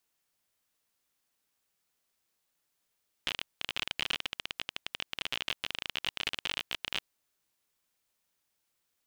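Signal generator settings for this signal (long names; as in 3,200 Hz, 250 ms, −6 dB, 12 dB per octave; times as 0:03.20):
Geiger counter clicks 34 per second −15.5 dBFS 3.73 s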